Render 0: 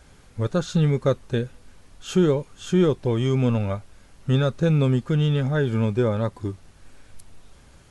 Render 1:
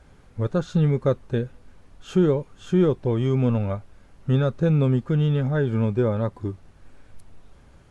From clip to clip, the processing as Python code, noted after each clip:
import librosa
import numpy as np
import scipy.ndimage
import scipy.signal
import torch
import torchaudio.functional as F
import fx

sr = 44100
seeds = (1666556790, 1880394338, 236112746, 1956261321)

y = fx.high_shelf(x, sr, hz=2700.0, db=-11.0)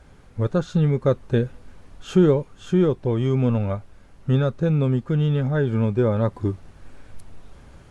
y = fx.rider(x, sr, range_db=10, speed_s=0.5)
y = y * librosa.db_to_amplitude(1.5)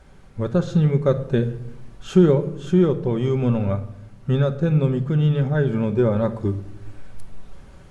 y = fx.room_shoebox(x, sr, seeds[0], volume_m3=2200.0, walls='furnished', distance_m=1.1)